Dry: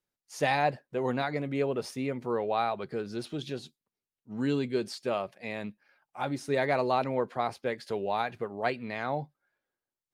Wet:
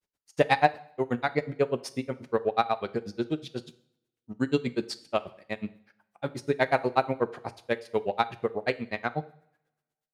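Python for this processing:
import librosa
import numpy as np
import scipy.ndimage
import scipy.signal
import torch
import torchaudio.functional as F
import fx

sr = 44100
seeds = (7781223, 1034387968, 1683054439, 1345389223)

y = fx.granulator(x, sr, seeds[0], grain_ms=77.0, per_s=8.2, spray_ms=27.0, spread_st=0)
y = fx.rev_double_slope(y, sr, seeds[1], early_s=0.58, late_s=1.5, knee_db=-24, drr_db=12.5)
y = fx.cheby_harmonics(y, sr, harmonics=(7,), levels_db=(-33,), full_scale_db=-12.5)
y = y * 10.0 ** (8.5 / 20.0)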